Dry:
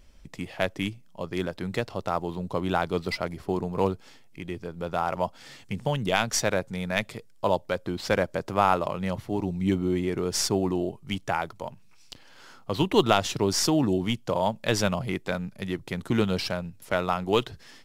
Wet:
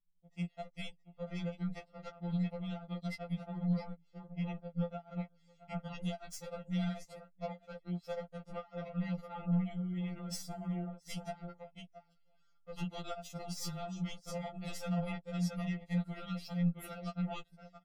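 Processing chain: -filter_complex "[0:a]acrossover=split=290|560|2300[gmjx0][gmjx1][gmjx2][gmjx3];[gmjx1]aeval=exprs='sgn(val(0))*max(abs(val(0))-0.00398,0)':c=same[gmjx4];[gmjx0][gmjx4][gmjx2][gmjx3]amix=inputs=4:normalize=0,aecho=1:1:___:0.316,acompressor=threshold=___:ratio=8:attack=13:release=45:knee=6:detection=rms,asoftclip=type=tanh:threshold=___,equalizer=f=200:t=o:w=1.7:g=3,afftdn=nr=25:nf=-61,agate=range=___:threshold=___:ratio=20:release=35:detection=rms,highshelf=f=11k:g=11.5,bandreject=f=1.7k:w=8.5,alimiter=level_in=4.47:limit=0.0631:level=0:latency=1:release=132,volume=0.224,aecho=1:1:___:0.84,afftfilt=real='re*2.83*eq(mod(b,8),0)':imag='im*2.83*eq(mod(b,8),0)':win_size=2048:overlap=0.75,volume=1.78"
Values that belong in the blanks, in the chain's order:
669, 0.0158, 0.0158, 0.02, 0.01, 1.5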